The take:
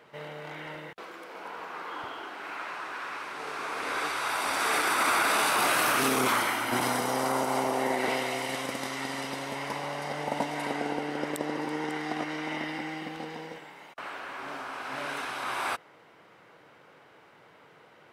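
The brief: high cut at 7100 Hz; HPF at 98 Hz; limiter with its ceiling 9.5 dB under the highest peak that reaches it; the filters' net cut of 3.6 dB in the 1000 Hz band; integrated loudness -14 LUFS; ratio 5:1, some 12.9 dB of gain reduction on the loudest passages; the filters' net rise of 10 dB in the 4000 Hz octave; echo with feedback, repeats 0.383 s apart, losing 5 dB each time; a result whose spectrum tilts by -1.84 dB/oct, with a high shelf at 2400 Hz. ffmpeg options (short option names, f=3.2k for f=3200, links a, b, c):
-af "highpass=98,lowpass=7.1k,equalizer=f=1k:t=o:g=-7,highshelf=f=2.4k:g=8.5,equalizer=f=4k:t=o:g=6,acompressor=threshold=-34dB:ratio=5,alimiter=level_in=5dB:limit=-24dB:level=0:latency=1,volume=-5dB,aecho=1:1:383|766|1149|1532|1915|2298|2681:0.562|0.315|0.176|0.0988|0.0553|0.031|0.0173,volume=22dB"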